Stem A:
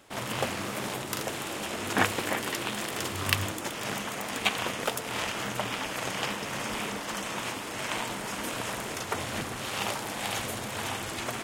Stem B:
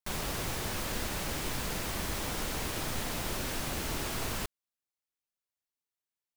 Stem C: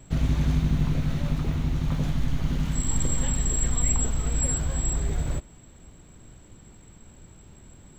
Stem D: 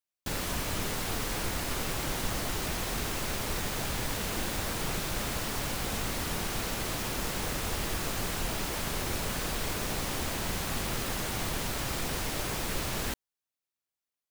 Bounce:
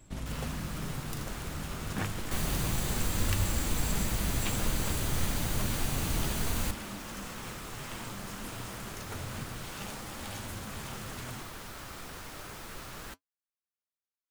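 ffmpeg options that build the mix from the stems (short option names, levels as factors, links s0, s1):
-filter_complex "[0:a]bass=f=250:g=15,treble=f=4000:g=5,volume=0.316[s0];[1:a]bass=f=250:g=10,treble=f=4000:g=5,bandreject=f=5300:w=9,adelay=2250,volume=1.19[s1];[2:a]acompressor=threshold=0.0398:ratio=6,volume=0.668[s2];[3:a]equalizer=f=1300:w=1.8:g=6,volume=0.422[s3];[s0][s1][s2][s3]amix=inputs=4:normalize=0,flanger=delay=3.4:depth=7.3:regen=-65:speed=0.29:shape=sinusoidal"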